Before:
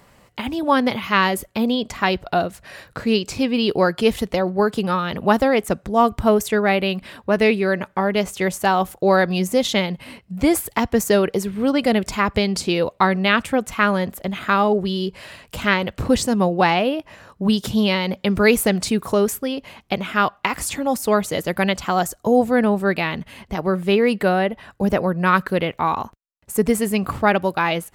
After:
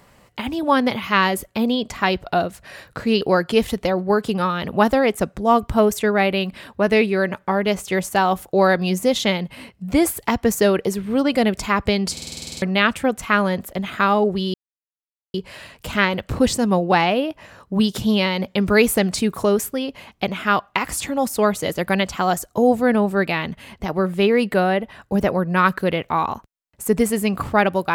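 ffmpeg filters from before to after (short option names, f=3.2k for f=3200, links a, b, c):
-filter_complex "[0:a]asplit=13[a][b][c][d][e][f][g][h][i][j][k][l][m];[a]atrim=end=3.212[n];[b]atrim=start=3.698:end=12.662[o];[c]atrim=start=12.608:end=12.662[p];[d]atrim=start=12.608:end=12.662[q];[e]atrim=start=12.608:end=12.662[r];[f]atrim=start=12.608:end=12.662[s];[g]atrim=start=12.608:end=12.662[t];[h]atrim=start=12.608:end=12.662[u];[i]atrim=start=12.608:end=12.662[v];[j]atrim=start=12.608:end=12.662[w];[k]atrim=start=12.608:end=12.662[x];[l]atrim=start=13.108:end=15.03,asetpts=PTS-STARTPTS,afade=t=out:st=1.918:d=0.004:c=hsin,apad=pad_dur=0.8[y];[m]atrim=start=15.03,asetpts=PTS-STARTPTS,afade=t=in:d=0.004:c=hsin[z];[n][o]acrossfade=d=0.004:c1=hsin:c2=hsin[aa];[aa][p]acrossfade=d=0.004:c1=hsin:c2=hsin[ab];[ab][q]acrossfade=d=0.004:c1=hsin:c2=hsin[ac];[ac][r]acrossfade=d=0.004:c1=hsin:c2=hsin[ad];[ad][s]acrossfade=d=0.004:c1=hsin:c2=hsin[ae];[ae][t]acrossfade=d=0.004:c1=hsin:c2=hsin[af];[af][u]acrossfade=d=0.004:c1=hsin:c2=hsin[ag];[ag][v]acrossfade=d=0.004:c1=hsin:c2=hsin[ah];[ah][w]acrossfade=d=0.004:c1=hsin:c2=hsin[ai];[ai][x]acrossfade=d=0.004:c1=hsin:c2=hsin[aj];[y][z]concat=n=2:v=0:a=1[ak];[aj][ak]acrossfade=d=0.004:c1=hsin:c2=hsin"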